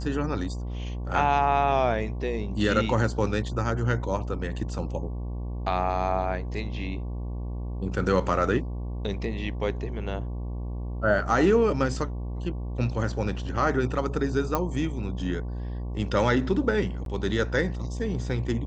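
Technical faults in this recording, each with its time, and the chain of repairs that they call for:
buzz 60 Hz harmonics 19 -32 dBFS
14.55 s: pop -11 dBFS
17.05–17.06 s: dropout 12 ms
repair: de-click; de-hum 60 Hz, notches 19; interpolate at 17.05 s, 12 ms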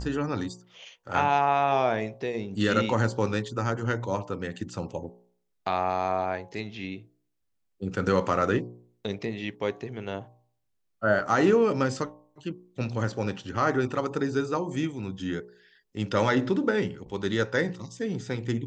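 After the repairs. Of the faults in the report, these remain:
nothing left

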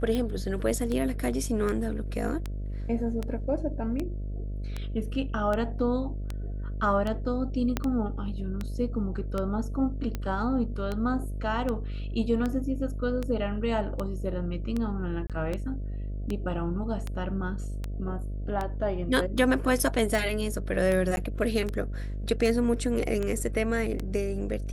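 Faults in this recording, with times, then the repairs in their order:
buzz 50 Hz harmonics 13 -33 dBFS
tick 78 rpm -18 dBFS
7.77 s: pop -12 dBFS
15.27–15.30 s: dropout 27 ms
21.16–21.17 s: dropout 11 ms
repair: de-click; de-hum 50 Hz, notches 13; interpolate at 15.27 s, 27 ms; interpolate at 21.16 s, 11 ms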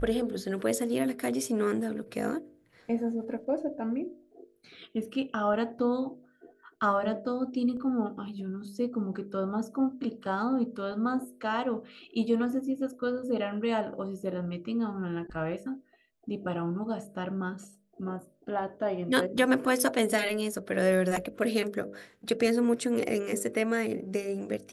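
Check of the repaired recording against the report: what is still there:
7.77 s: pop

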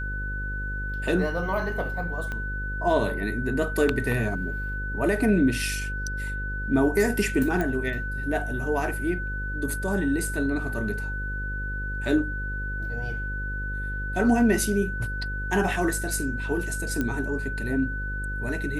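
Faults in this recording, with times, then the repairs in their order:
buzz 50 Hz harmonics 11 -32 dBFS
whine 1.5 kHz -32 dBFS
2.32 s: pop -20 dBFS
7.61 s: pop -15 dBFS
17.01 s: pop -14 dBFS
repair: de-click; band-stop 1.5 kHz, Q 30; de-hum 50 Hz, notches 11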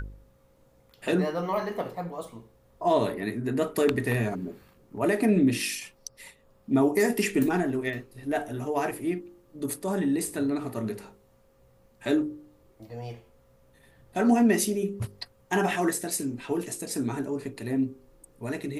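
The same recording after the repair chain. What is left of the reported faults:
2.32 s: pop

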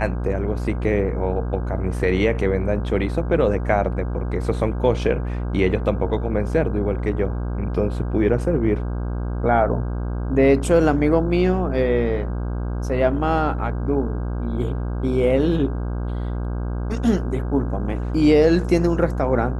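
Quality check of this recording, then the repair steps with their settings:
buzz 60 Hz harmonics 27 -25 dBFS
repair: de-hum 60 Hz, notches 27

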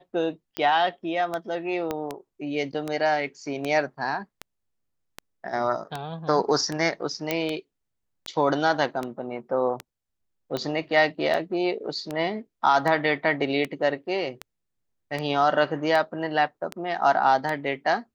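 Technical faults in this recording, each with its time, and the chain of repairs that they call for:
tick 78 rpm -15 dBFS
1.91 s: pop -14 dBFS
7.31 s: pop -9 dBFS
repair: de-click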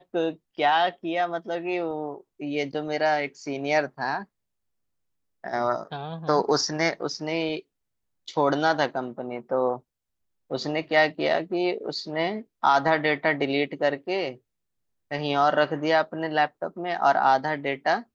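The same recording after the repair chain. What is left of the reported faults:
1.91 s: pop

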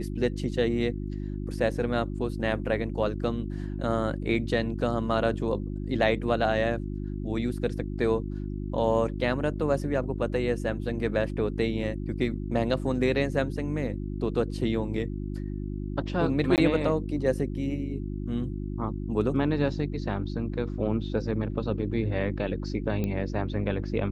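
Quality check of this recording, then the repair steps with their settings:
hum 50 Hz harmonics 7 -33 dBFS
16.56–16.58 s: dropout 18 ms
23.04 s: pop -18 dBFS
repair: de-click; de-hum 50 Hz, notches 7; interpolate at 16.56 s, 18 ms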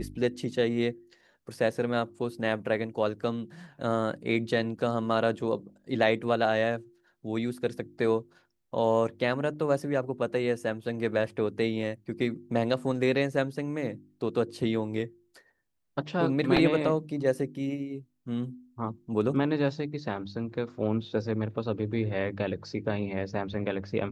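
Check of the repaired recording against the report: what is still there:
nothing left

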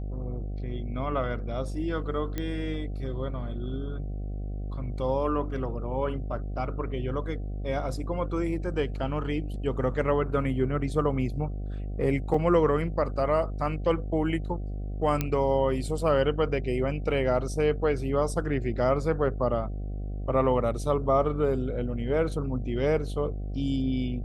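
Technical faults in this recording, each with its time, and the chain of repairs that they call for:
buzz 50 Hz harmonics 15 -33 dBFS
2.38 s: pop -17 dBFS
12.34 s: dropout 3.3 ms
15.21 s: pop -12 dBFS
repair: de-click; de-hum 50 Hz, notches 15; interpolate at 12.34 s, 3.3 ms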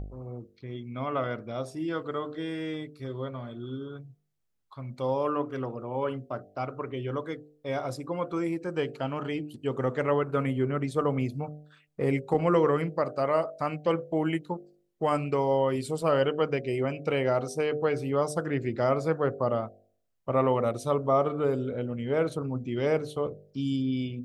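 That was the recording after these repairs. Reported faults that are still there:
nothing left

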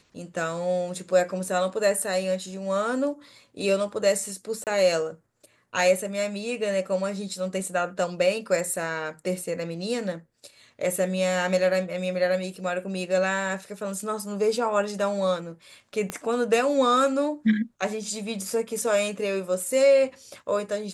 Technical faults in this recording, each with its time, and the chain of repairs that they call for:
4.64–4.67 s: dropout 28 ms
16.10 s: pop -15 dBFS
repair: de-click; interpolate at 4.64 s, 28 ms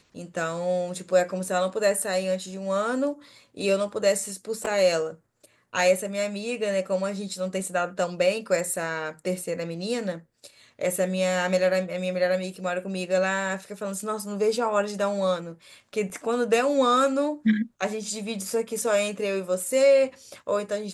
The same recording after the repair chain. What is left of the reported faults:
16.10 s: pop

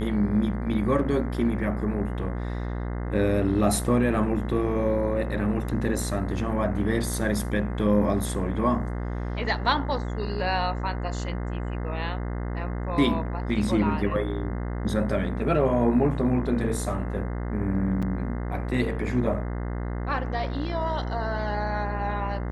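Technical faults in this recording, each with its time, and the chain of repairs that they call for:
buzz 60 Hz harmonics 35 -30 dBFS
18.02–18.03 s: dropout 6.3 ms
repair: de-hum 60 Hz, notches 35; interpolate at 18.02 s, 6.3 ms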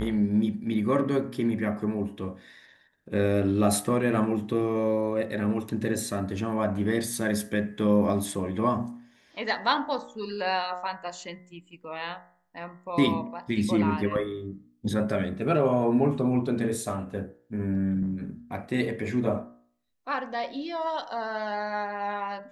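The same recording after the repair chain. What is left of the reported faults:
nothing left

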